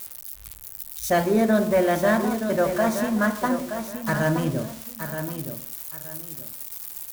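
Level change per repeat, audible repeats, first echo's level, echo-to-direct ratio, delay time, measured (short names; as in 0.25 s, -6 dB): -11.5 dB, 2, -8.5 dB, -8.0 dB, 0.923 s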